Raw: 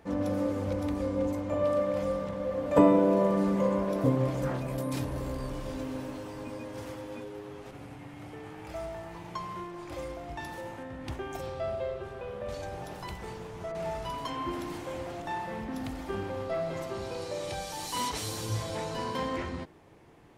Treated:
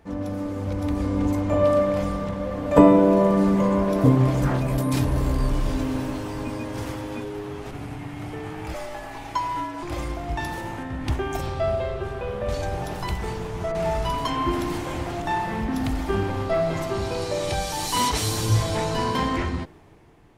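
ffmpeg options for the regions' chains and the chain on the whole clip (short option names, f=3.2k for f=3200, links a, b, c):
-filter_complex "[0:a]asettb=1/sr,asplit=3[a][b][c];[a]atrim=end=8.744[d];[b]atrim=start=8.74:end=9.83,asetpts=PTS-STARTPTS,afade=t=in:d=0.004:c=qsin,afade=t=out:st=1.086:d=0.004:c=qsin,highpass=f=420:p=1,afreqshift=-64,aecho=1:1:6:0.61,atrim=end_sample=48069[e];[c]atrim=start=9.826[f];[d][e]acrossfade=d=0.004:c1=hsin:c2=qsin[g];[g][f]acrossfade=d=0.004:c1=qsin:c2=hsin,lowshelf=f=68:g=11,bandreject=f=530:w=12,dynaudnorm=f=180:g=11:m=9.5dB"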